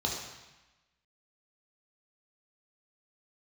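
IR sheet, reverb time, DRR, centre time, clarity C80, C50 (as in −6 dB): 1.1 s, −2.0 dB, 52 ms, 5.0 dB, 2.5 dB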